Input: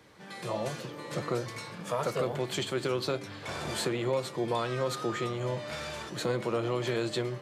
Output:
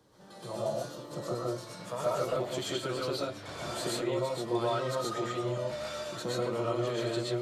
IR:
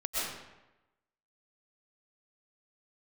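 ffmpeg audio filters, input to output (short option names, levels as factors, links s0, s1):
-filter_complex "[0:a]asetnsamples=n=441:p=0,asendcmd='1.67 equalizer g -5',equalizer=f=2200:t=o:w=0.78:g=-14.5[s0];[1:a]atrim=start_sample=2205,afade=t=out:st=0.2:d=0.01,atrim=end_sample=9261[s1];[s0][s1]afir=irnorm=-1:irlink=0,volume=0.631"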